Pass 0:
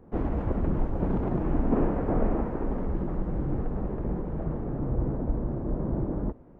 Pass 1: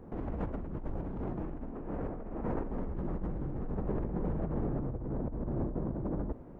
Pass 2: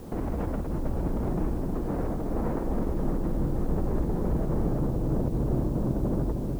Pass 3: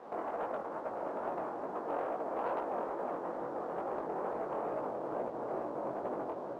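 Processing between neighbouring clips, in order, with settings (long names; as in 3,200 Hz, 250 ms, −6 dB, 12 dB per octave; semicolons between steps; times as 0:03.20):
compressor whose output falls as the input rises −33 dBFS, ratio −1; level −2.5 dB
brickwall limiter −29 dBFS, peak gain reduction 9 dB; background noise white −67 dBFS; feedback echo with a low-pass in the loop 315 ms, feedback 76%, low-pass 890 Hz, level −5 dB; level +8 dB
flat-topped band-pass 960 Hz, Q 0.9; leveller curve on the samples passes 1; chorus effect 2.3 Hz, delay 16 ms, depth 7.8 ms; level +3 dB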